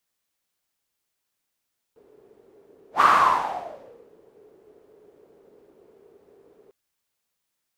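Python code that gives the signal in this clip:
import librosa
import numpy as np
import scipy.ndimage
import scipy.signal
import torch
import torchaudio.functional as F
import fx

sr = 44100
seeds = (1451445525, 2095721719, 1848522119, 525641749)

y = fx.whoosh(sr, seeds[0], length_s=4.75, peak_s=1.06, rise_s=0.12, fall_s=1.2, ends_hz=420.0, peak_hz=1200.0, q=7.0, swell_db=38.5)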